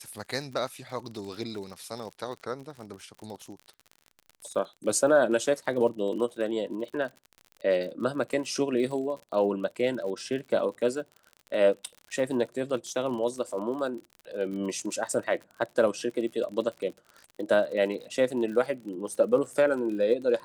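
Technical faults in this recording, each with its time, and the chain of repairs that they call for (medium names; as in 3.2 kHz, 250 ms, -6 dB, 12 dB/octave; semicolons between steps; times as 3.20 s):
crackle 52 per s -37 dBFS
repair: de-click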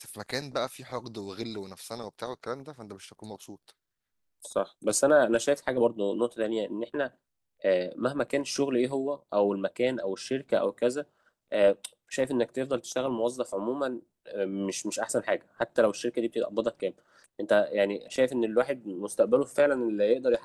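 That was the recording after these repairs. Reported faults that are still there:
nothing left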